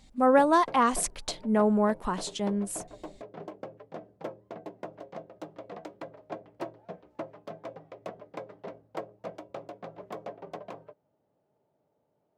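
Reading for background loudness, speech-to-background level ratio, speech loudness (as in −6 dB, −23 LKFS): −44.0 LKFS, 18.0 dB, −26.0 LKFS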